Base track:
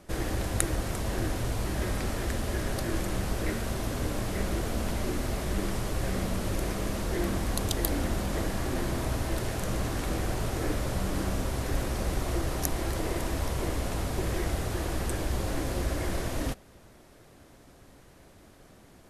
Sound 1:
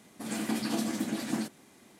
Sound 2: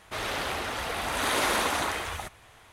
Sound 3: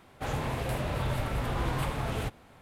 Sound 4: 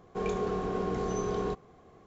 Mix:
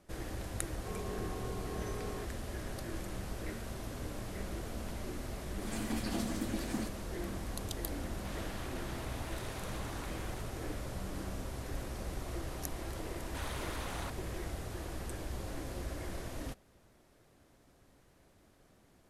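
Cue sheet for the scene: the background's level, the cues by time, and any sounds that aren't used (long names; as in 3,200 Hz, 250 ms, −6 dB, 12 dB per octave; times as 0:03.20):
base track −10.5 dB
0:00.70: mix in 4 −4.5 dB + downward compressor 1.5 to 1, threshold −48 dBFS
0:05.41: mix in 1 −6 dB
0:08.14: mix in 2 −4.5 dB + downward compressor, threshold −42 dBFS
0:12.20: mix in 2 −14 dB + output level in coarse steps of 15 dB
not used: 3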